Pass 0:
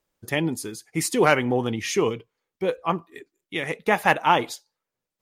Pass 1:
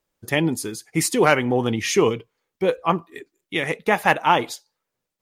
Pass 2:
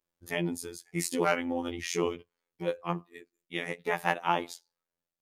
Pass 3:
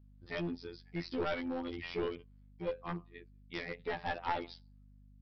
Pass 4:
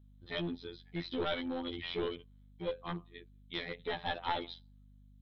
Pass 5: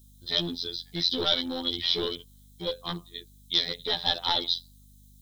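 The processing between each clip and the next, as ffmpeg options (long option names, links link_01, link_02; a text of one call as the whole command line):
ffmpeg -i in.wav -af "dynaudnorm=framelen=170:gausssize=3:maxgain=4.5dB" out.wav
ffmpeg -i in.wav -af "afftfilt=real='hypot(re,im)*cos(PI*b)':imag='0':win_size=2048:overlap=0.75,volume=-7.5dB" out.wav
ffmpeg -i in.wav -af "aeval=exprs='val(0)+0.002*(sin(2*PI*50*n/s)+sin(2*PI*2*50*n/s)/2+sin(2*PI*3*50*n/s)/3+sin(2*PI*4*50*n/s)/4+sin(2*PI*5*50*n/s)/5)':channel_layout=same,aresample=11025,aeval=exprs='clip(val(0),-1,0.0398)':channel_layout=same,aresample=44100,volume=-4dB" out.wav
ffmpeg -i in.wav -af "superequalizer=13b=2.82:14b=0.398" out.wav
ffmpeg -i in.wav -af "aexciter=amount=13.6:drive=6.4:freq=3800,volume=4dB" out.wav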